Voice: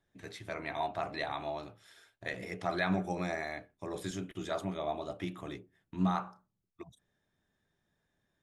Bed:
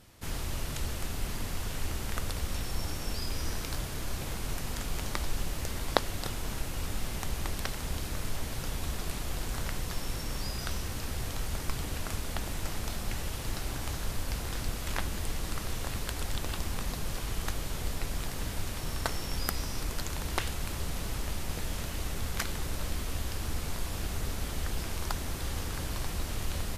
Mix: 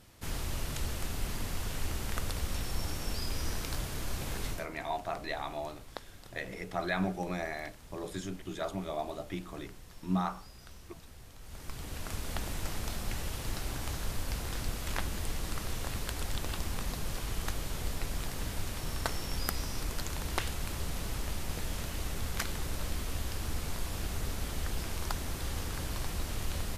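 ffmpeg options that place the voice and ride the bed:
-filter_complex "[0:a]adelay=4100,volume=0.944[s0];[1:a]volume=5.31,afade=t=out:st=4.46:d=0.21:silence=0.158489,afade=t=in:st=11.4:d=0.94:silence=0.16788[s1];[s0][s1]amix=inputs=2:normalize=0"

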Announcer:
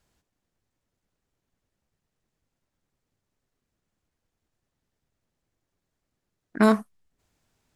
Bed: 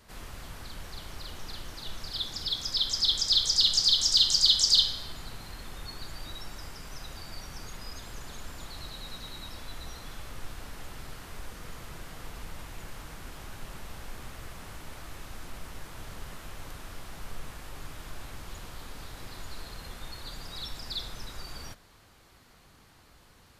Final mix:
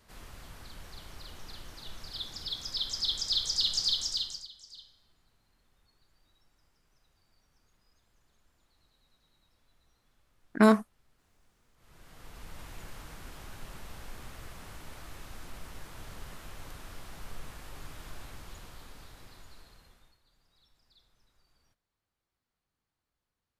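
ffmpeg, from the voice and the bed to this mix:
-filter_complex "[0:a]adelay=4000,volume=0.841[s0];[1:a]volume=10.6,afade=t=out:st=3.89:d=0.59:silence=0.0668344,afade=t=in:st=11.74:d=0.94:silence=0.0501187,afade=t=out:st=18.12:d=2.07:silence=0.0446684[s1];[s0][s1]amix=inputs=2:normalize=0"

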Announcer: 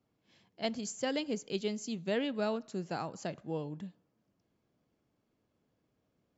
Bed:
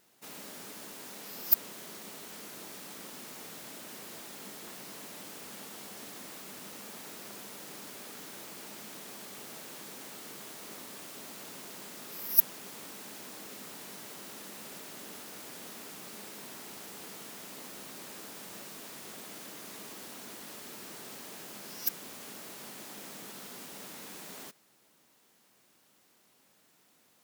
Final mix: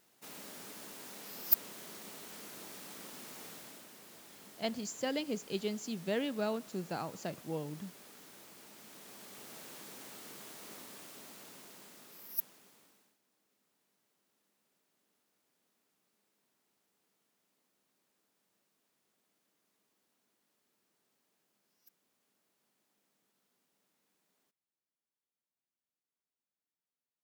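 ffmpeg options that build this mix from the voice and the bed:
-filter_complex "[0:a]adelay=4000,volume=0.841[s0];[1:a]volume=1.33,afade=t=out:st=3.48:d=0.43:silence=0.473151,afade=t=in:st=8.74:d=0.89:silence=0.530884,afade=t=out:st=10.72:d=2.45:silence=0.0334965[s1];[s0][s1]amix=inputs=2:normalize=0"

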